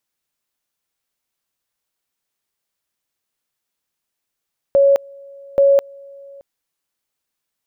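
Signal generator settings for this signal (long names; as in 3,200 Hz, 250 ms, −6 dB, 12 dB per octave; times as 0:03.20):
tone at two levels in turn 556 Hz −8.5 dBFS, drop 27.5 dB, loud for 0.21 s, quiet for 0.62 s, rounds 2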